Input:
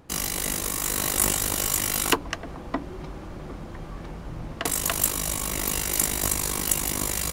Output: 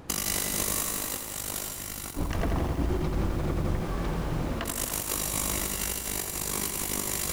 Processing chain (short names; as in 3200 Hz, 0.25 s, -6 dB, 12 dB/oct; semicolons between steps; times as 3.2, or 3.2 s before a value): 1.67–3.81 low shelf 190 Hz +8 dB; negative-ratio compressor -32 dBFS, ratio -0.5; lo-fi delay 85 ms, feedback 80%, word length 8-bit, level -6.5 dB; gain +1 dB